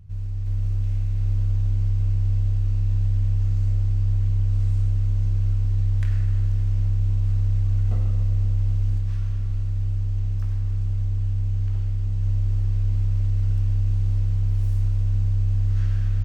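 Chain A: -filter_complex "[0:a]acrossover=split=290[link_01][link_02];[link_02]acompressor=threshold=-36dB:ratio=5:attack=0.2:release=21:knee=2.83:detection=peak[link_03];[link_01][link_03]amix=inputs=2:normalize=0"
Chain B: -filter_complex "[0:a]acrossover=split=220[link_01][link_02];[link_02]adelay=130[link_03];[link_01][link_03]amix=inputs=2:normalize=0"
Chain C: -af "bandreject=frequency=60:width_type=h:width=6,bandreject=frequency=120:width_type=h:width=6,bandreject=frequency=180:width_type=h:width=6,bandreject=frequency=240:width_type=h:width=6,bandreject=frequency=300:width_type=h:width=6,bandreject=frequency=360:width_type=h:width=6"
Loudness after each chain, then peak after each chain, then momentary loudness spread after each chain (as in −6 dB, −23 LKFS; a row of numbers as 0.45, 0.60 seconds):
−24.0, −24.5, −24.0 LKFS; −13.0, −13.5, −13.5 dBFS; 3, 3, 3 LU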